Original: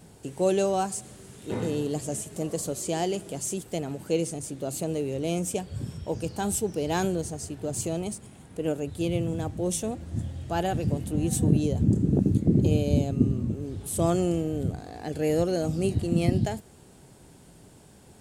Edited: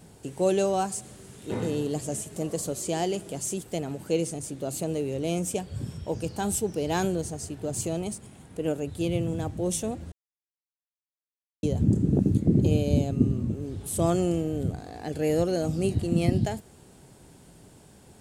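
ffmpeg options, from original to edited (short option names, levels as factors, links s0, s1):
-filter_complex "[0:a]asplit=3[s0][s1][s2];[s0]atrim=end=10.12,asetpts=PTS-STARTPTS,afade=t=out:st=10.116:d=0.004:c=hsin[s3];[s1]atrim=start=10.12:end=11.63,asetpts=PTS-STARTPTS,volume=0[s4];[s2]atrim=start=11.63,asetpts=PTS-STARTPTS,afade=t=in:d=0.004:c=hsin[s5];[s3][s4][s5]concat=n=3:v=0:a=1"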